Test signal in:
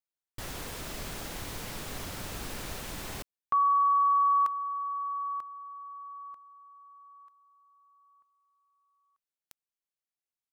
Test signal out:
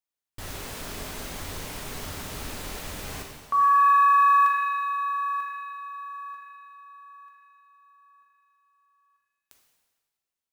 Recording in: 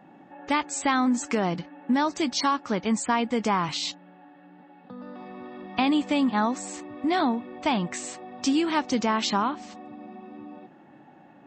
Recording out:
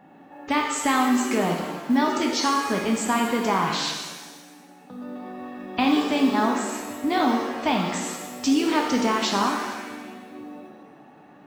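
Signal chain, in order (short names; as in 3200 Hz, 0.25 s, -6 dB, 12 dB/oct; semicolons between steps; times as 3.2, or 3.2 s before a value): modulation noise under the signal 33 dB; shimmer reverb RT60 1.3 s, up +7 st, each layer -8 dB, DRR 1 dB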